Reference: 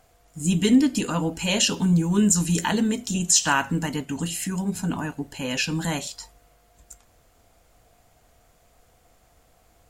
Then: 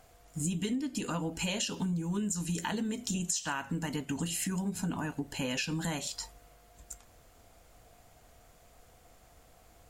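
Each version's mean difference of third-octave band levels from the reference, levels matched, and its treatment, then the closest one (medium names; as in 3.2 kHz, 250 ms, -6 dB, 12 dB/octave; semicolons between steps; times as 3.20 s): 3.5 dB: compression 12:1, threshold -30 dBFS, peak gain reduction 18 dB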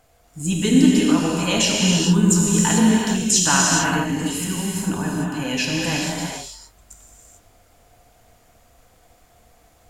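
7.5 dB: gated-style reverb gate 470 ms flat, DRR -3 dB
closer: first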